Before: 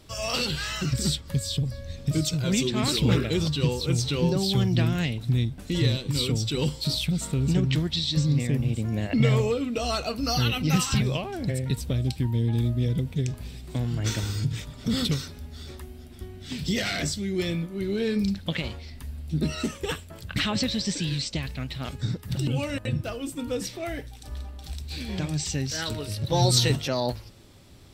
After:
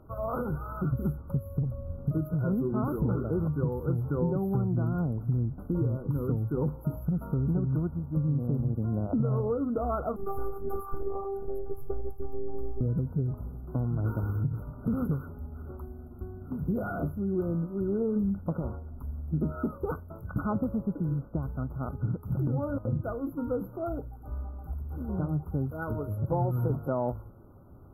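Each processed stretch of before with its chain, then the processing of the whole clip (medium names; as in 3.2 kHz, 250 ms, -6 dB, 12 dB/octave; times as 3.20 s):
10.16–12.81 s: comb 2 ms, depth 73% + robot voice 392 Hz
whole clip: FFT band-reject 1.5–11 kHz; treble shelf 7.1 kHz -11 dB; compression, threshold -24 dBFS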